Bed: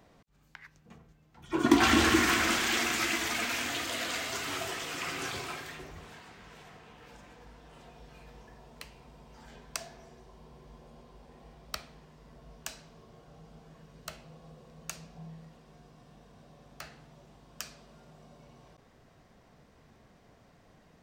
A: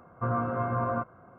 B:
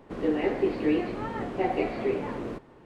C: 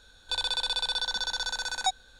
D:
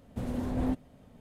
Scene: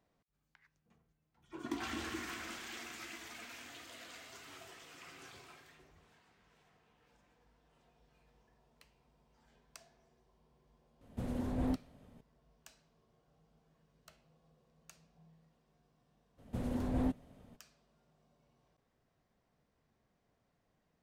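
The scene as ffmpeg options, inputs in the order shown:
-filter_complex "[4:a]asplit=2[a][b];[0:a]volume=-18dB[c];[a]atrim=end=1.2,asetpts=PTS-STARTPTS,volume=-4.5dB,afade=t=in:d=0.004:c=hsin,afade=t=out:st=1.196:d=0.004:c=hsin,adelay=11010[d];[b]atrim=end=1.2,asetpts=PTS-STARTPTS,volume=-3.5dB,afade=t=in:d=0.02,afade=t=out:st=1.18:d=0.02,adelay=16370[e];[c][d][e]amix=inputs=3:normalize=0"

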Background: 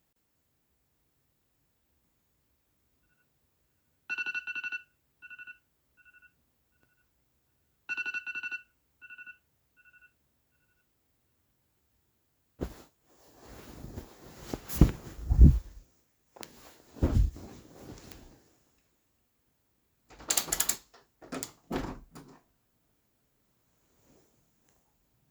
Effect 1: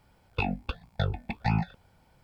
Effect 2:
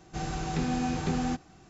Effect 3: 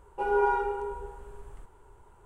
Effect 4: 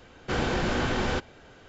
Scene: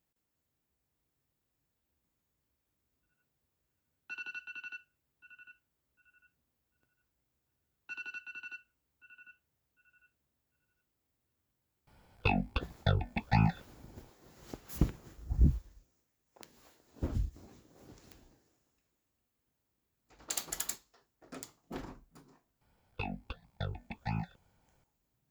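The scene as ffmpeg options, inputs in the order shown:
-filter_complex "[1:a]asplit=2[a][b];[0:a]volume=-8.5dB[c];[a]atrim=end=2.23,asetpts=PTS-STARTPTS,volume=-0.5dB,afade=t=in:d=0.004:c=hsin,afade=t=out:st=2.226:d=0.004:c=hsin,adelay=11870[d];[b]atrim=end=2.23,asetpts=PTS-STARTPTS,volume=-9.5dB,afade=t=in:d=0.004:c=hsin,afade=t=out:st=2.226:d=0.004:c=hsin,adelay=22610[e];[c][d][e]amix=inputs=3:normalize=0"

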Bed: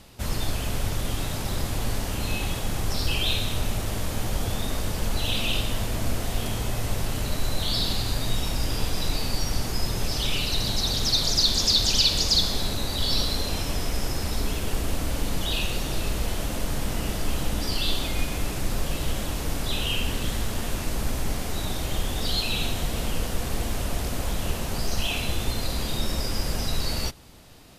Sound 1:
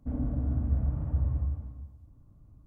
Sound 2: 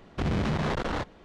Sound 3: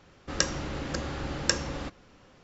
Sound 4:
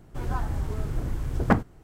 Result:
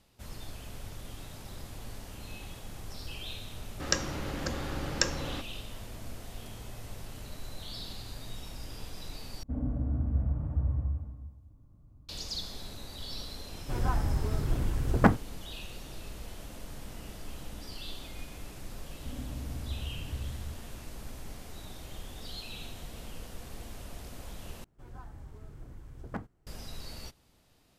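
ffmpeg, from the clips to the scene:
-filter_complex "[1:a]asplit=2[a][b];[4:a]asplit=2[c][d];[0:a]volume=-16dB,asplit=3[e][f][g];[e]atrim=end=9.434[h];[a]atrim=end=2.66,asetpts=PTS-STARTPTS,volume=-1.5dB[i];[f]atrim=start=12.086:end=24.644[j];[d]atrim=end=1.83,asetpts=PTS-STARTPTS,volume=-18dB[k];[g]atrim=start=26.466[l];[3:a]atrim=end=2.43,asetpts=PTS-STARTPTS,volume=-2dB,afade=t=in:d=0.004:c=hsin,afade=t=out:st=2.426:d=0.004:c=hsin,adelay=3520[m];[c]atrim=end=1.83,asetpts=PTS-STARTPTS,volume=-0.5dB,afade=t=in:d=0.004:c=hsin,afade=t=out:st=1.826:d=0.004:c=hsin,adelay=13540[n];[b]atrim=end=2.66,asetpts=PTS-STARTPTS,volume=-10dB,afade=t=in:d=0.004:c=hsin,afade=t=out:st=2.656:d=0.004:c=hsin,adelay=18990[o];[h][i]acrossfade=d=0.004:c1=hsin:c2=hsin[p];[p][j]acrossfade=d=0.004:c1=hsin:c2=hsin[q];[q][k]acrossfade=d=0.004:c1=hsin:c2=hsin[r];[r][l]acrossfade=d=0.004:c1=hsin:c2=hsin[s];[s][m][n][o]amix=inputs=4:normalize=0"

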